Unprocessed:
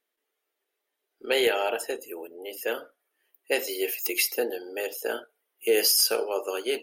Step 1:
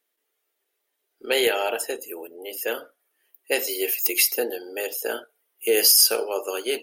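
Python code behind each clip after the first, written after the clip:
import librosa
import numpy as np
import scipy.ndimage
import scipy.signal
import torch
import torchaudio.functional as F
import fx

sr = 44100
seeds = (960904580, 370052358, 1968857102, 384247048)

y = fx.high_shelf(x, sr, hz=5100.0, db=6.5)
y = y * 10.0 ** (1.5 / 20.0)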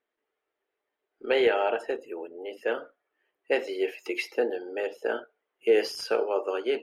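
y = scipy.signal.sosfilt(scipy.signal.butter(2, 1900.0, 'lowpass', fs=sr, output='sos'), x)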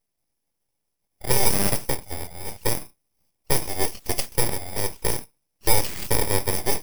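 y = fx.bit_reversed(x, sr, seeds[0], block=32)
y = fx.cheby_harmonics(y, sr, harmonics=(3, 4, 5, 8), levels_db=(-18, -19, -24, -21), full_scale_db=-12.0)
y = np.abs(y)
y = y * 10.0 ** (8.0 / 20.0)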